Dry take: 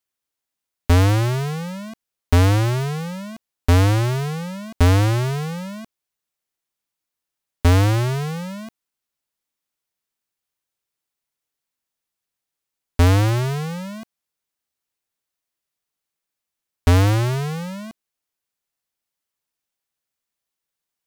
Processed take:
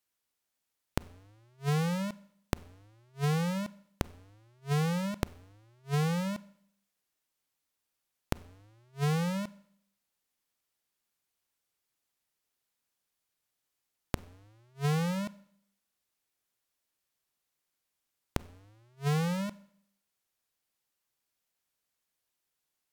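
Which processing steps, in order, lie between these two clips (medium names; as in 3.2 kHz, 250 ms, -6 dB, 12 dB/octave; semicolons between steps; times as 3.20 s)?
inverted gate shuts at -22 dBFS, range -41 dB; speed mistake 48 kHz file played as 44.1 kHz; Schroeder reverb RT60 0.67 s, combs from 31 ms, DRR 19 dB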